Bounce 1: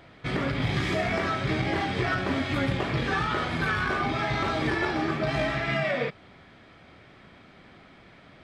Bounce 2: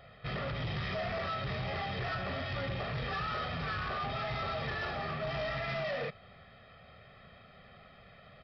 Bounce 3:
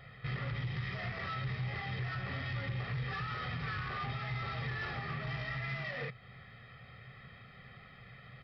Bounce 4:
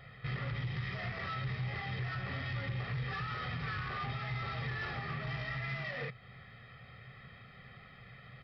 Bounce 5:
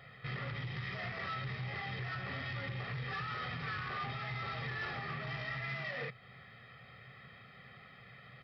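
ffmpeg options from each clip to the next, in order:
-af "aecho=1:1:1.6:0.98,aresample=11025,asoftclip=type=tanh:threshold=0.0501,aresample=44100,volume=0.473"
-af "equalizer=f=125:t=o:w=0.33:g=12,equalizer=f=630:t=o:w=0.33:g=-10,equalizer=f=2000:t=o:w=0.33:g=7,alimiter=level_in=2.11:limit=0.0631:level=0:latency=1:release=322,volume=0.473"
-af anull
-af "highpass=f=160:p=1"

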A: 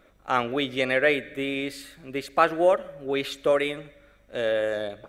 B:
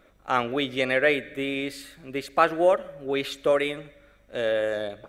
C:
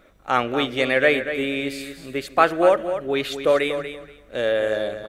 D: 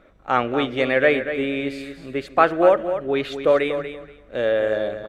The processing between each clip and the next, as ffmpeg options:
-af anull
-af "aecho=1:1:239|478|717:0.316|0.0601|0.0114,volume=1.5"
-af "aemphasis=mode=reproduction:type=75kf,volume=1.19"

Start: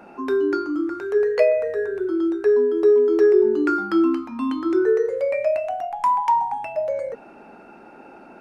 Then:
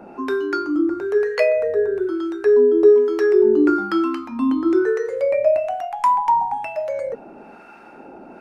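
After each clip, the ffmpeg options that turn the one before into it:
-filter_complex "[0:a]acrossover=split=870[s0][s1];[s0]aeval=exprs='val(0)*(1-0.7/2+0.7/2*cos(2*PI*1.1*n/s))':c=same[s2];[s1]aeval=exprs='val(0)*(1-0.7/2-0.7/2*cos(2*PI*1.1*n/s))':c=same[s3];[s2][s3]amix=inputs=2:normalize=0,volume=2"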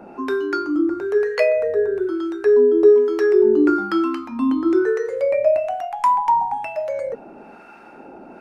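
-af anull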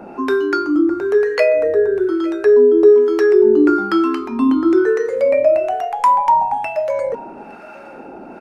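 -filter_complex "[0:a]asplit=2[s0][s1];[s1]alimiter=limit=0.211:level=0:latency=1:release=340,volume=0.841[s2];[s0][s2]amix=inputs=2:normalize=0,aecho=1:1:862:0.0794"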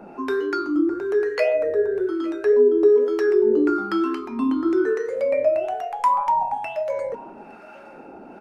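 -af "flanger=delay=4.6:depth=5.5:regen=79:speed=1.9:shape=sinusoidal,volume=0.794"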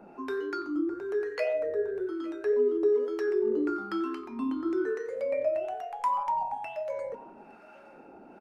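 -filter_complex "[0:a]asplit=2[s0][s1];[s1]adelay=90,highpass=300,lowpass=3400,asoftclip=type=hard:threshold=0.168,volume=0.141[s2];[s0][s2]amix=inputs=2:normalize=0,volume=0.355"

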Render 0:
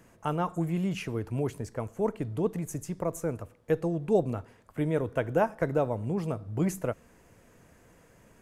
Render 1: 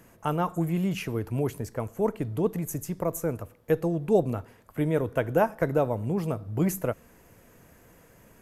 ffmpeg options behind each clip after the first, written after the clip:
-af "equalizer=f=12000:w=4.3:g=13,volume=1.33"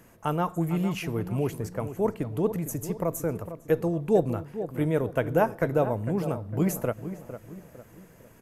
-filter_complex "[0:a]asplit=2[s0][s1];[s1]adelay=454,lowpass=f=1600:p=1,volume=0.282,asplit=2[s2][s3];[s3]adelay=454,lowpass=f=1600:p=1,volume=0.43,asplit=2[s4][s5];[s5]adelay=454,lowpass=f=1600:p=1,volume=0.43,asplit=2[s6][s7];[s7]adelay=454,lowpass=f=1600:p=1,volume=0.43[s8];[s0][s2][s4][s6][s8]amix=inputs=5:normalize=0"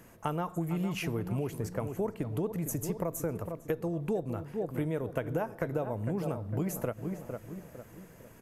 -af "acompressor=threshold=0.0398:ratio=12"

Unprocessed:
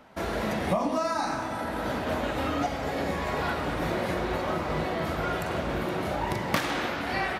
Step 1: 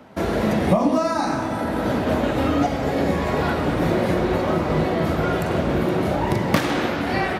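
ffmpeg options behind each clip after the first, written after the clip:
-filter_complex "[0:a]highpass=67,acrossover=split=540[s0][s1];[s0]acontrast=80[s2];[s2][s1]amix=inputs=2:normalize=0,volume=1.58"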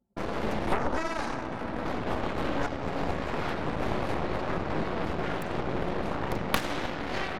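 -af "anlmdn=15.8,aeval=exprs='0.891*(cos(1*acos(clip(val(0)/0.891,-1,1)))-cos(1*PI/2))+0.282*(cos(3*acos(clip(val(0)/0.891,-1,1)))-cos(3*PI/2))+0.0562*(cos(7*acos(clip(val(0)/0.891,-1,1)))-cos(7*PI/2))+0.0794*(cos(8*acos(clip(val(0)/0.891,-1,1)))-cos(8*PI/2))':c=same,volume=0.75"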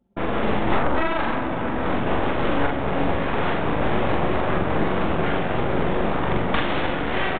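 -filter_complex "[0:a]aresample=8000,asoftclip=type=tanh:threshold=0.0944,aresample=44100,asplit=2[s0][s1];[s1]adelay=43,volume=0.708[s2];[s0][s2]amix=inputs=2:normalize=0,volume=2.51"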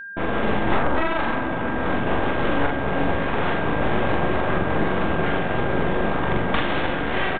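-af "aeval=exprs='val(0)+0.0224*sin(2*PI*1600*n/s)':c=same"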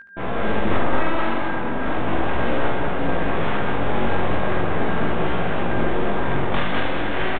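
-filter_complex "[0:a]flanger=delay=16.5:depth=4.9:speed=0.38,asplit=2[s0][s1];[s1]aecho=0:1:72.89|204.1:0.562|0.708[s2];[s0][s2]amix=inputs=2:normalize=0"

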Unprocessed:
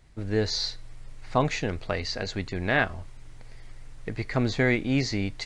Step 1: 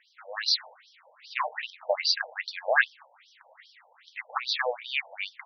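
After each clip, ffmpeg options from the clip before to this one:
-af "aeval=exprs='0.376*sin(PI/2*1.78*val(0)/0.376)':c=same,asubboost=boost=9.5:cutoff=110,afftfilt=real='re*between(b*sr/1024,650*pow(4400/650,0.5+0.5*sin(2*PI*2.5*pts/sr))/1.41,650*pow(4400/650,0.5+0.5*sin(2*PI*2.5*pts/sr))*1.41)':imag='im*between(b*sr/1024,650*pow(4400/650,0.5+0.5*sin(2*PI*2.5*pts/sr))/1.41,650*pow(4400/650,0.5+0.5*sin(2*PI*2.5*pts/sr))*1.41)':win_size=1024:overlap=0.75"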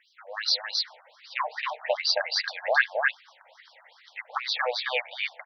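-af "aecho=1:1:268:0.708"

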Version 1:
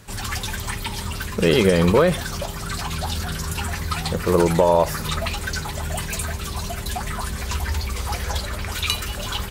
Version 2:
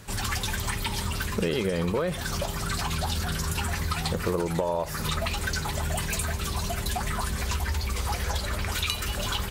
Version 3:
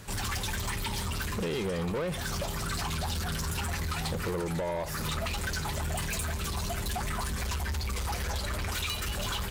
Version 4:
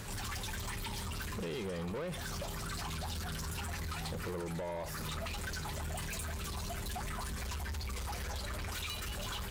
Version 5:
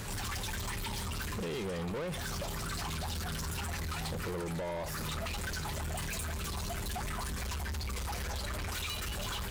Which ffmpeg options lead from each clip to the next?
-af "acompressor=threshold=0.0631:ratio=6"
-af "asoftclip=type=tanh:threshold=0.0422"
-af "alimiter=level_in=5.31:limit=0.0631:level=0:latency=1,volume=0.188,volume=1.5"
-af "asoftclip=type=tanh:threshold=0.0133,volume=1.78"

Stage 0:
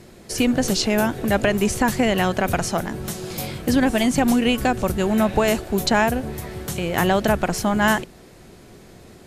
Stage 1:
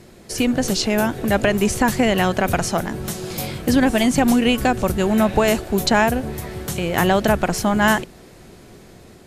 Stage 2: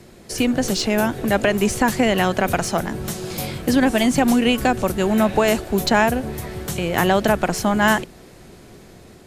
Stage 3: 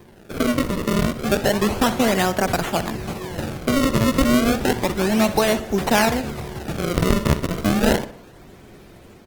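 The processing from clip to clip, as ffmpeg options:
-af "dynaudnorm=f=460:g=5:m=1.41"
-filter_complex "[0:a]acrossover=split=180|4100[s0][s1][s2];[s0]alimiter=limit=0.0708:level=0:latency=1:release=255[s3];[s2]asoftclip=type=tanh:threshold=0.1[s4];[s3][s1][s4]amix=inputs=3:normalize=0"
-filter_complex "[0:a]acrusher=samples=31:mix=1:aa=0.000001:lfo=1:lforange=49.6:lforate=0.31,asplit=2[s0][s1];[s1]adelay=63,lowpass=f=4600:p=1,volume=0.211,asplit=2[s2][s3];[s3]adelay=63,lowpass=f=4600:p=1,volume=0.49,asplit=2[s4][s5];[s5]adelay=63,lowpass=f=4600:p=1,volume=0.49,asplit=2[s6][s7];[s7]adelay=63,lowpass=f=4600:p=1,volume=0.49,asplit=2[s8][s9];[s9]adelay=63,lowpass=f=4600:p=1,volume=0.49[s10];[s0][s2][s4][s6][s8][s10]amix=inputs=6:normalize=0,volume=0.891" -ar 48000 -c:a libopus -b:a 20k

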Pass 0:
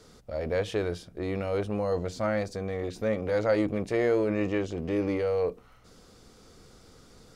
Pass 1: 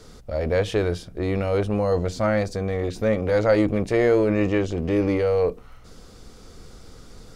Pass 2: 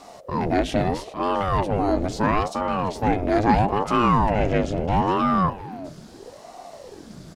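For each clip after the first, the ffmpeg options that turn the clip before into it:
-af "lowshelf=f=61:g=11,volume=2"
-filter_complex "[0:a]asplit=2[s0][s1];[s1]asoftclip=type=tanh:threshold=0.133,volume=0.596[s2];[s0][s2]amix=inputs=2:normalize=0,aecho=1:1:397:0.168,aeval=exprs='val(0)*sin(2*PI*440*n/s+440*0.65/0.76*sin(2*PI*0.76*n/s))':c=same"

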